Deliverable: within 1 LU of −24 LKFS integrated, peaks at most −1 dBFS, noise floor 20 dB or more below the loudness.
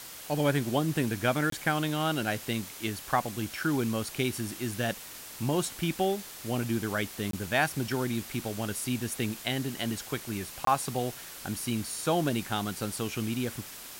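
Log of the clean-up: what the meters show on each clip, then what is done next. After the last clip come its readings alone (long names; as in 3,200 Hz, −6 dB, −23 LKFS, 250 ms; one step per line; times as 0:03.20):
number of dropouts 3; longest dropout 23 ms; background noise floor −45 dBFS; target noise floor −51 dBFS; integrated loudness −31.0 LKFS; sample peak −11.5 dBFS; target loudness −24.0 LKFS
→ repair the gap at 0:01.50/0:07.31/0:10.65, 23 ms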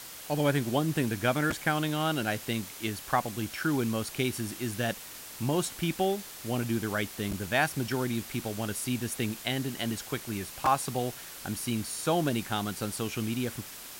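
number of dropouts 0; background noise floor −45 dBFS; target noise floor −51 dBFS
→ broadband denoise 6 dB, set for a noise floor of −45 dBFS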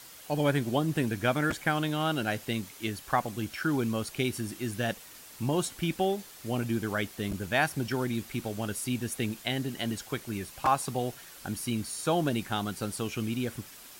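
background noise floor −50 dBFS; target noise floor −51 dBFS
→ broadband denoise 6 dB, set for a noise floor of −50 dBFS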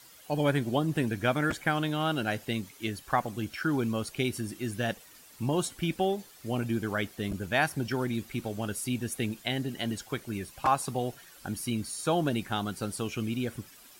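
background noise floor −54 dBFS; integrated loudness −31.0 LKFS; sample peak −12.0 dBFS; target loudness −24.0 LKFS
→ level +7 dB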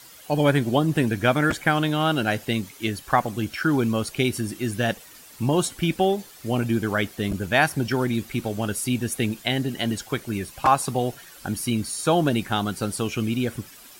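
integrated loudness −24.0 LKFS; sample peak −5.0 dBFS; background noise floor −47 dBFS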